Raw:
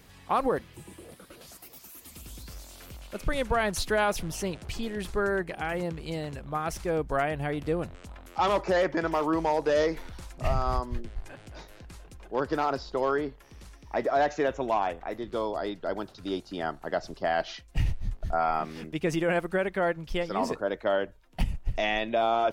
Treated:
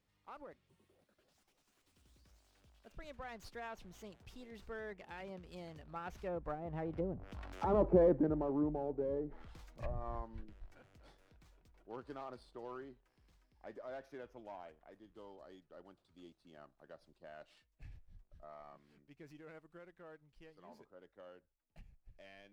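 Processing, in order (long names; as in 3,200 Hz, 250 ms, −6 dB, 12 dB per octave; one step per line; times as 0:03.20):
source passing by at 0:07.87, 31 m/s, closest 9.4 metres
treble cut that deepens with the level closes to 430 Hz, closed at −35.5 dBFS
windowed peak hold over 3 samples
level +2.5 dB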